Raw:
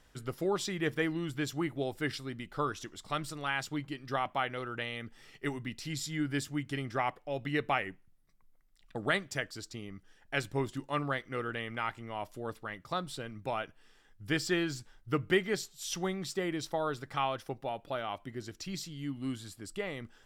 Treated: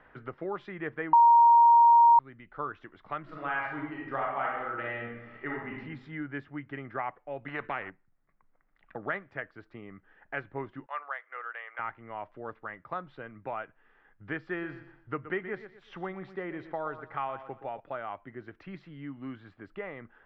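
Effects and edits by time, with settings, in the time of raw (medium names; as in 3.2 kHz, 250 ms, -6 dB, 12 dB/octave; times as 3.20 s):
1.13–2.19 s: bleep 937 Hz -7.5 dBFS
3.21–5.74 s: reverb throw, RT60 0.87 s, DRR -3 dB
7.48–7.90 s: spectrum-flattening compressor 2:1
10.86–11.79 s: Bessel high-pass 880 Hz, order 6
14.40–17.80 s: feedback delay 121 ms, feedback 30%, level -13 dB
whole clip: low-pass 1.9 kHz 24 dB/octave; bass shelf 450 Hz -10 dB; three bands compressed up and down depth 40%; trim +1 dB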